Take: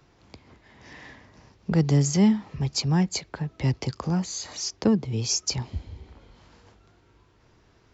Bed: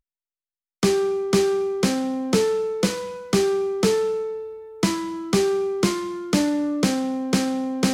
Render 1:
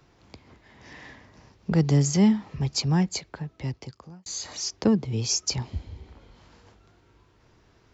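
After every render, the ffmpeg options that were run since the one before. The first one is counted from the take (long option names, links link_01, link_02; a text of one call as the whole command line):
ffmpeg -i in.wav -filter_complex "[0:a]asplit=2[link_01][link_02];[link_01]atrim=end=4.26,asetpts=PTS-STARTPTS,afade=type=out:start_time=2.93:duration=1.33[link_03];[link_02]atrim=start=4.26,asetpts=PTS-STARTPTS,afade=type=in:duration=0.004:curve=hsin[link_04];[link_03][link_04]concat=n=2:v=0:a=1" out.wav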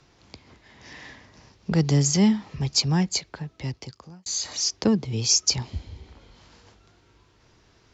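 ffmpeg -i in.wav -af "lowpass=6500,highshelf=frequency=3800:gain=11.5" out.wav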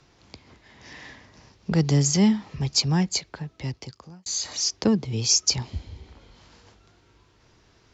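ffmpeg -i in.wav -af anull out.wav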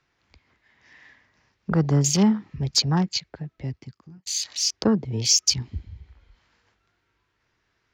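ffmpeg -i in.wav -af "afwtdn=0.02,equalizer=frequency=1800:width_type=o:width=1.5:gain=10.5" out.wav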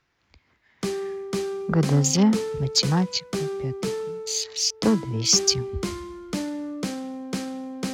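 ffmpeg -i in.wav -i bed.wav -filter_complex "[1:a]volume=-8.5dB[link_01];[0:a][link_01]amix=inputs=2:normalize=0" out.wav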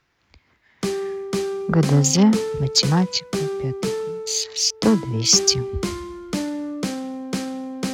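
ffmpeg -i in.wav -af "volume=3.5dB,alimiter=limit=-2dB:level=0:latency=1" out.wav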